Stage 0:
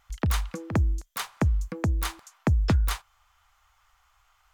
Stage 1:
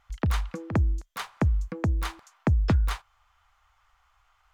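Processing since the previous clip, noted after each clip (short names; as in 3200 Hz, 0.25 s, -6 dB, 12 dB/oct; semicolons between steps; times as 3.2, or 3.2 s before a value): high shelf 5400 Hz -11 dB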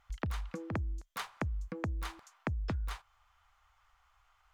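compressor 6:1, threshold -30 dBFS, peak gain reduction 11 dB; gain -3.5 dB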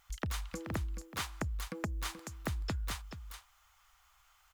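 pre-emphasis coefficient 0.8; echo 0.429 s -10.5 dB; slew limiter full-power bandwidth 20 Hz; gain +12.5 dB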